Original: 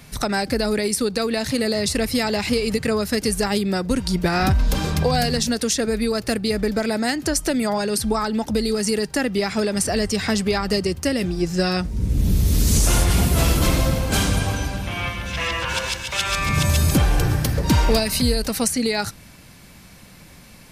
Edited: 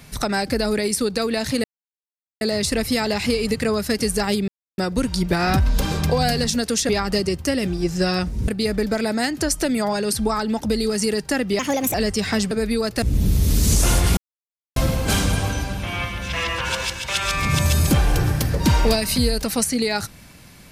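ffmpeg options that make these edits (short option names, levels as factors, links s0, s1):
-filter_complex "[0:a]asplit=11[s0][s1][s2][s3][s4][s5][s6][s7][s8][s9][s10];[s0]atrim=end=1.64,asetpts=PTS-STARTPTS,afade=t=out:st=1.636:d=0.004:c=hsin,apad=pad_dur=0.77[s11];[s1]atrim=start=1.64:end=3.71,asetpts=PTS-STARTPTS,afade=t=in:d=0.004:c=hsin,afade=t=out:st=2.066:d=0.004:c=hsin,apad=pad_dur=0.3[s12];[s2]atrim=start=3.71:end=5.822,asetpts=PTS-STARTPTS,afade=t=in:d=0.004:c=hsin[s13];[s3]atrim=start=10.468:end=12.062[s14];[s4]atrim=start=6.328:end=9.444[s15];[s5]atrim=start=9.44:end=9.9,asetpts=PTS-STARTPTS,asetrate=57771,aresample=44100,atrim=end_sample=15485,asetpts=PTS-STARTPTS[s16];[s6]atrim=start=9.896:end=10.472[s17];[s7]atrim=start=5.818:end=6.332[s18];[s8]atrim=start=12.058:end=13.21,asetpts=PTS-STARTPTS,afade=t=out:st=1.148:d=0.004:c=hsin[s19];[s9]atrim=start=13.21:end=13.8,asetpts=PTS-STARTPTS,volume=0[s20];[s10]atrim=start=13.8,asetpts=PTS-STARTPTS,afade=t=in:d=0.004:c=hsin[s21];[s11][s12][s13]concat=n=3:v=0:a=1[s22];[s22][s14]acrossfade=d=0.004:c1=hsin:c2=hsin[s23];[s23][s15]acrossfade=d=0.004:c1=hsin:c2=hsin[s24];[s24][s16]acrossfade=d=0.004:c1=hsin:c2=hsin[s25];[s25][s17]acrossfade=d=0.004:c1=hsin:c2=hsin[s26];[s26][s18]acrossfade=d=0.004:c1=hsin:c2=hsin[s27];[s19][s20][s21]concat=n=3:v=0:a=1[s28];[s27][s28]acrossfade=d=0.004:c1=hsin:c2=hsin"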